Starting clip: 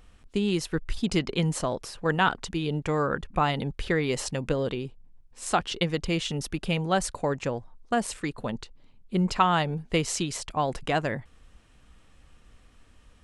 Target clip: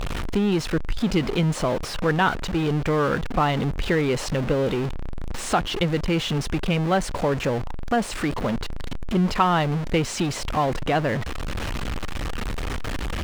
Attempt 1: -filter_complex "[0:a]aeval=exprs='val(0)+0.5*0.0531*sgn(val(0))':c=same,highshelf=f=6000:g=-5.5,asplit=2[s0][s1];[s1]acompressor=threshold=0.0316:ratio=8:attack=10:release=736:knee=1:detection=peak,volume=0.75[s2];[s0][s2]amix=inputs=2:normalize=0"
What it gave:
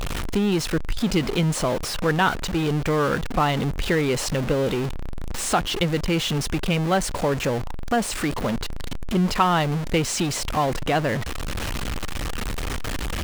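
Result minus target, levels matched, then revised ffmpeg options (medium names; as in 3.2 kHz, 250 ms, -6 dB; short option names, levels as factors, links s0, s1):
8 kHz band +5.5 dB
-filter_complex "[0:a]aeval=exprs='val(0)+0.5*0.0531*sgn(val(0))':c=same,highshelf=f=6000:g=-15.5,asplit=2[s0][s1];[s1]acompressor=threshold=0.0316:ratio=8:attack=10:release=736:knee=1:detection=peak,volume=0.75[s2];[s0][s2]amix=inputs=2:normalize=0"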